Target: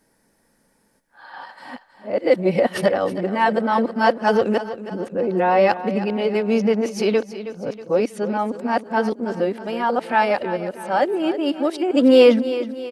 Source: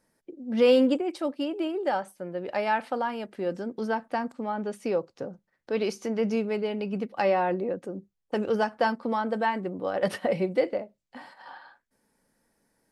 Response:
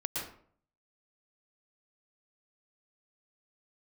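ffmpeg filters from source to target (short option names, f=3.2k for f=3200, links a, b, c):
-af "areverse,aecho=1:1:320|640|960|1280|1600:0.224|0.107|0.0516|0.0248|0.0119,volume=8dB"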